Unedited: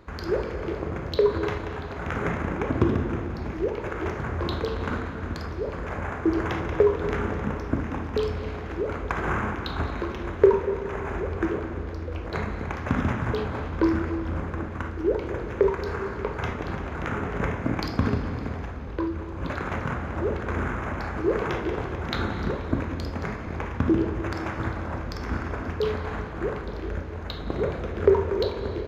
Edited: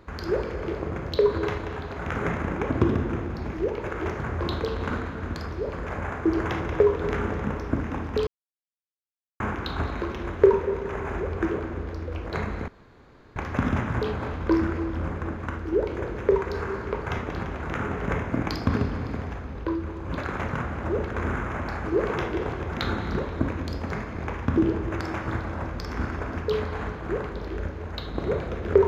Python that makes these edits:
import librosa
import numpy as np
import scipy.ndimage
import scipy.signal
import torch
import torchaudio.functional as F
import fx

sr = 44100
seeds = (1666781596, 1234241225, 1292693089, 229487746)

y = fx.edit(x, sr, fx.silence(start_s=8.27, length_s=1.13),
    fx.insert_room_tone(at_s=12.68, length_s=0.68), tone=tone)